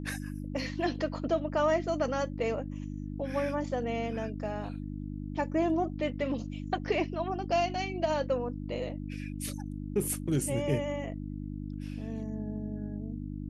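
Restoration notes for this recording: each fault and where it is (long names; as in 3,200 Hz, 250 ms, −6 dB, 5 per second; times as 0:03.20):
mains hum 50 Hz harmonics 6 −38 dBFS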